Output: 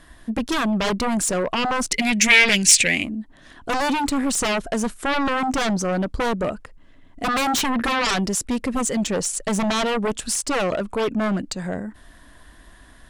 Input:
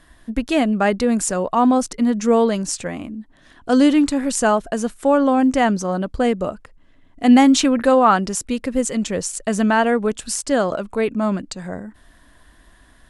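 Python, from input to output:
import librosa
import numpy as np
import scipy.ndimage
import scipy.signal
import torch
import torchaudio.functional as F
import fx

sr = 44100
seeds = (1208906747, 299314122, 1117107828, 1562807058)

y = fx.fold_sine(x, sr, drive_db=16, ceiling_db=-1.0)
y = fx.high_shelf_res(y, sr, hz=1600.0, db=11.5, q=3.0, at=(1.91, 3.03), fade=0.02)
y = y * librosa.db_to_amplitude(-17.0)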